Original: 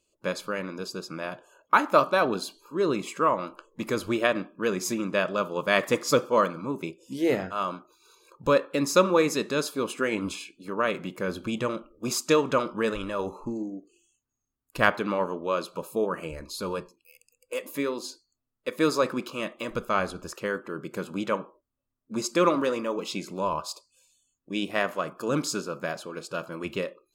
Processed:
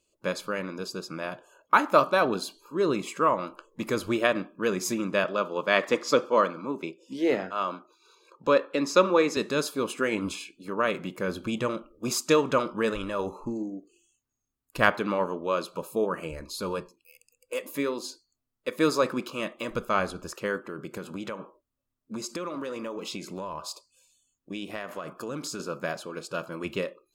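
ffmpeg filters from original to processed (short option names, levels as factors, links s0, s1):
-filter_complex "[0:a]asettb=1/sr,asplit=3[s0][s1][s2];[s0]atrim=end=5.244[s3];[s1]atrim=start=5.24:end=9.37,asetpts=PTS-STARTPTS,afade=t=in:d=0.004:c=qsin,afade=t=out:st=4.126:d=0.004:c=qsin,acrossover=split=180 6500:gain=0.158 1 0.2[s4][s5][s6];[s4][s5][s6]amix=inputs=3:normalize=0[s7];[s2]atrim=start=9.366[s8];[s3][s7]acrossfade=d=0.004:c1=hsin:c2=qsin[s9];[s9][s8]acrossfade=d=0.004:c1=qsin:c2=hsin,asettb=1/sr,asplit=3[s10][s11][s12];[s10]atrim=end=20.644[s13];[s11]atrim=start=20.64:end=25.6,asetpts=PTS-STARTPTS,afade=t=in:d=0.004:c=qsin,afade=t=out:st=4.956:d=0.004:c=qsin,acompressor=threshold=0.0282:ratio=6:attack=3.2:release=140:knee=1:detection=peak[s14];[s12]atrim=start=25.596[s15];[s13][s14]acrossfade=d=0.004:c1=hsin:c2=qsin[s16];[s16][s15]acrossfade=d=0.004:c1=qsin:c2=hsin"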